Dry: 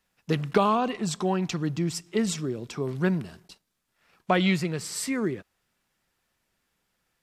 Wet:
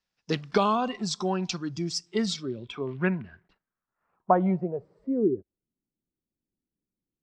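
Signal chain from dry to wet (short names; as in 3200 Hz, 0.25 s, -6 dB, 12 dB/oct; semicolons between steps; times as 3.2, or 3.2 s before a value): low-pass sweep 5300 Hz -> 300 Hz, 2.15–5.68; spectral noise reduction 10 dB; gain -1.5 dB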